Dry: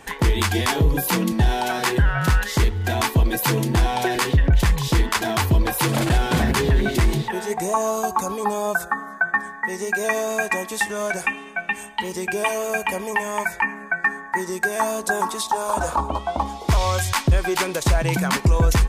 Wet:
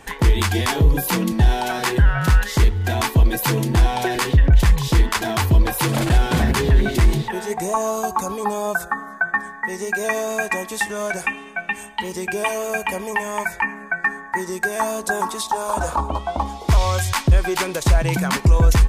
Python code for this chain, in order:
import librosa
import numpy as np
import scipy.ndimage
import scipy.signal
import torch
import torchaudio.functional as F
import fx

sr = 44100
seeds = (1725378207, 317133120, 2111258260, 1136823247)

y = fx.low_shelf(x, sr, hz=73.0, db=6.5)